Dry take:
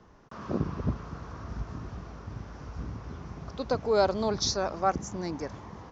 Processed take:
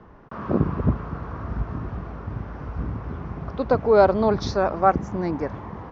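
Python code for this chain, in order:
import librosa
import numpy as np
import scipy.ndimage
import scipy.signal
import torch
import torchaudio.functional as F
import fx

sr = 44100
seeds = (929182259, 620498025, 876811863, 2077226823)

y = scipy.signal.sosfilt(scipy.signal.butter(2, 2100.0, 'lowpass', fs=sr, output='sos'), x)
y = y * 10.0 ** (8.5 / 20.0)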